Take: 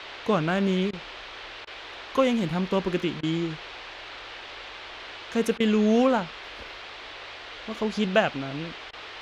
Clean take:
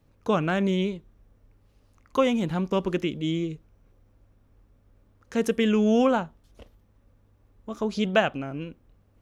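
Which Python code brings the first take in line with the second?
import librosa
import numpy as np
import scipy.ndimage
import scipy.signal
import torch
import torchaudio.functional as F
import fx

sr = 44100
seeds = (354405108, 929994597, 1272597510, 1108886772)

y = fx.fix_interpolate(x, sr, at_s=(0.91, 1.65, 3.21, 5.58, 8.91), length_ms=20.0)
y = fx.noise_reduce(y, sr, print_start_s=1.48, print_end_s=1.98, reduce_db=20.0)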